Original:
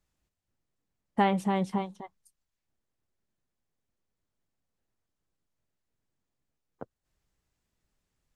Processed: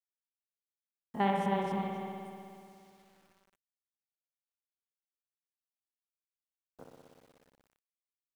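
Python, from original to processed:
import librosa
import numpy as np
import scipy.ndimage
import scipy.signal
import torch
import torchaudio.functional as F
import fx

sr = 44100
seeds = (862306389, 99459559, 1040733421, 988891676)

y = fx.spec_steps(x, sr, hold_ms=50)
y = fx.rev_spring(y, sr, rt60_s=2.5, pass_ms=(60,), chirp_ms=25, drr_db=-0.5)
y = fx.quant_dither(y, sr, seeds[0], bits=10, dither='none')
y = y * librosa.db_to_amplitude(-5.0)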